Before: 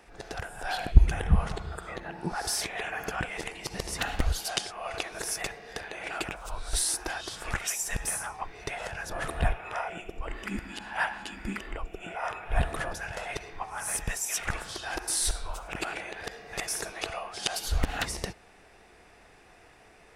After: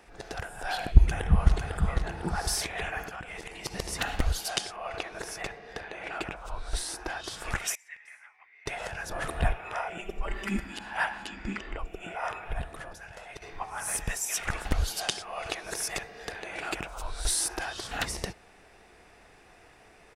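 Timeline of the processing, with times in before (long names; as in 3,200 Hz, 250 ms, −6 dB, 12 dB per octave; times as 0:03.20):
0:00.96–0:01.89: delay throw 500 ms, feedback 40%, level −5 dB
0:03.02–0:03.62: downward compressor, threshold −36 dBFS
0:04.76–0:07.24: low-pass filter 2,900 Hz 6 dB per octave
0:07.75–0:08.66: resonant band-pass 2,100 Hz, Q 9.3
0:09.98–0:10.64: comb filter 5.1 ms, depth 90%
0:11.27–0:11.79: low-pass filter 7,100 Hz 24 dB per octave
0:12.53–0:13.42: clip gain −9 dB
0:14.65–0:17.91: reverse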